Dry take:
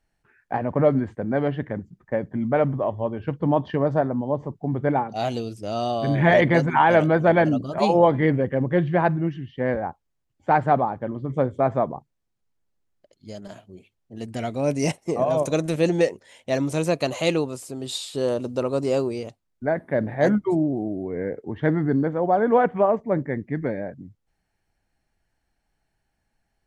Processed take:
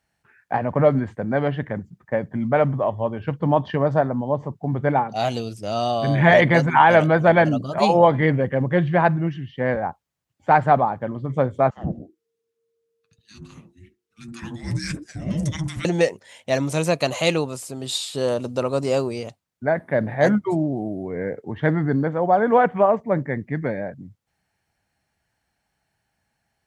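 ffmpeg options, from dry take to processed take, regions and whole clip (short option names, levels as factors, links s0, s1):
-filter_complex "[0:a]asettb=1/sr,asplit=3[s0][s1][s2];[s0]atrim=end=11.704[s3];[s1]atrim=start=11.7:end=15.85,asetpts=PTS-STARTPTS,afade=t=in:d=0.004:c=qsin,afade=t=out:st=4.146:d=0.004:c=qsin,flanger=delay=6.6:depth=3:regen=-42:speed=1.8:shape=triangular,acrossover=split=160|1200[s4][s5][s6];[s5]adelay=70[s7];[s4]adelay=110[s8];[s8][s7][s6]amix=inputs=3:normalize=0,atrim=end_sample=183015,afreqshift=-460[s9];[s2]atrim=start=15.846[s10];[s3][s9]acrossfade=d=0.004:c1=hsin:c2=qsin[s11];[s11][s10]acrossfade=d=0.004:c1=qsin:c2=hsin,highpass=88,equalizer=f=330:w=1.1:g=-6,volume=1.68"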